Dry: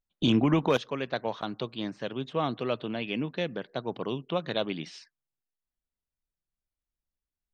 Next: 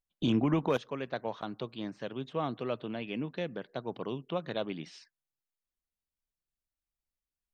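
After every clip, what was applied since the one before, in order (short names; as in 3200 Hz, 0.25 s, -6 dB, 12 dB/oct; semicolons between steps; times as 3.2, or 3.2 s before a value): dynamic EQ 4100 Hz, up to -5 dB, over -45 dBFS, Q 0.72; gain -4 dB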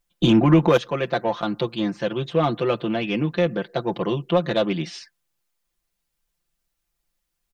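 comb 5.8 ms, depth 77%; in parallel at -4 dB: soft clip -29.5 dBFS, distortion -7 dB; on the sum: gain +8 dB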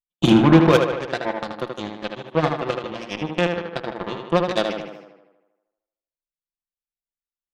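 added harmonics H 3 -30 dB, 5 -21 dB, 7 -14 dB, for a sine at -4.5 dBFS; tape echo 77 ms, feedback 64%, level -4 dB, low-pass 3700 Hz; gain +1 dB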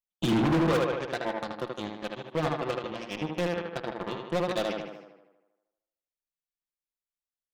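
hard clip -16 dBFS, distortion -6 dB; gain -5 dB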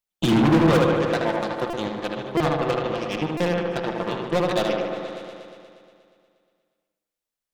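on a send: repeats that get brighter 0.119 s, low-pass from 750 Hz, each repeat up 1 oct, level -6 dB; on the sum: stuck buffer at 1.7/2.37/3.37, samples 128, times 10; gain +6 dB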